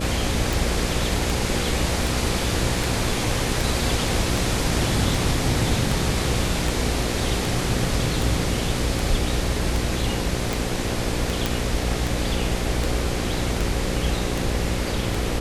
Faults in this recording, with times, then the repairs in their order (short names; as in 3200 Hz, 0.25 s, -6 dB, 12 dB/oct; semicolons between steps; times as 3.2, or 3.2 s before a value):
buzz 60 Hz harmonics 9 -28 dBFS
tick 78 rpm
11.46 pop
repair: de-click; de-hum 60 Hz, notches 9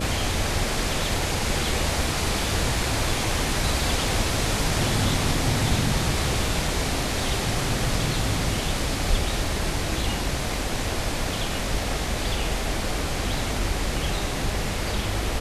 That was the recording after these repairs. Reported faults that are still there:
none